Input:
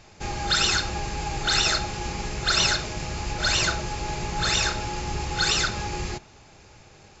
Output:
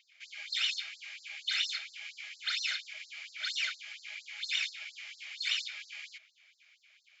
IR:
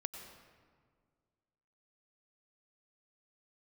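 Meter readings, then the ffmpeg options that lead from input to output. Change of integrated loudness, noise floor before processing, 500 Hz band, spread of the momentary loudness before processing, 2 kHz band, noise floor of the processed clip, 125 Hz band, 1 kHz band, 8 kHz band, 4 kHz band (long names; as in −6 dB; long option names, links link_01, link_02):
−10.5 dB, −52 dBFS, below −35 dB, 11 LU, −9.5 dB, −68 dBFS, below −40 dB, −26.5 dB, can't be measured, −9.0 dB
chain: -filter_complex "[0:a]asplit=3[link_01][link_02][link_03];[link_01]bandpass=frequency=270:width_type=q:width=8,volume=0dB[link_04];[link_02]bandpass=frequency=2290:width_type=q:width=8,volume=-6dB[link_05];[link_03]bandpass=frequency=3010:width_type=q:width=8,volume=-9dB[link_06];[link_04][link_05][link_06]amix=inputs=3:normalize=0,afftfilt=real='re*gte(b*sr/1024,570*pow(4100/570,0.5+0.5*sin(2*PI*4.3*pts/sr)))':imag='im*gte(b*sr/1024,570*pow(4100/570,0.5+0.5*sin(2*PI*4.3*pts/sr)))':win_size=1024:overlap=0.75,volume=7.5dB"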